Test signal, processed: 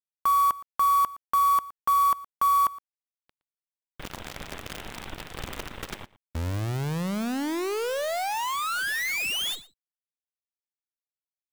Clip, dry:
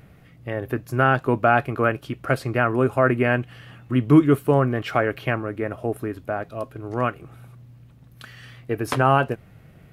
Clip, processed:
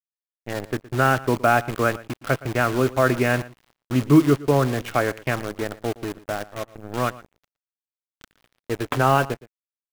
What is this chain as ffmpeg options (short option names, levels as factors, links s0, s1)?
-filter_complex "[0:a]aresample=8000,aeval=exprs='sgn(val(0))*max(abs(val(0))-0.0119,0)':c=same,aresample=44100,acrusher=bits=6:dc=4:mix=0:aa=0.000001,asplit=2[s0][s1];[s1]adelay=116.6,volume=0.112,highshelf=f=4000:g=-2.62[s2];[s0][s2]amix=inputs=2:normalize=0"